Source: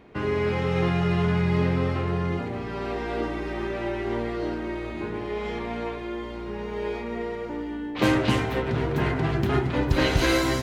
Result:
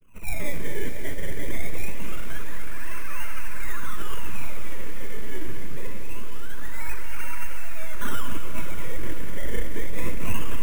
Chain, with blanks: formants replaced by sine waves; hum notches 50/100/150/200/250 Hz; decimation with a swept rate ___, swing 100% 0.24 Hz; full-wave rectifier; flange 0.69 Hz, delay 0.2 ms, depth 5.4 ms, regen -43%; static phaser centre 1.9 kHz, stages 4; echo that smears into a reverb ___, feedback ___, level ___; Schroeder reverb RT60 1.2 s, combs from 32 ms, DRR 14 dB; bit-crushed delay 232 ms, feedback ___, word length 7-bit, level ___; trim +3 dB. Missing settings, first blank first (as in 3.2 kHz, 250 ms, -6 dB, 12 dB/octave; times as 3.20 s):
23×, 584 ms, 61%, -9.5 dB, 35%, -10 dB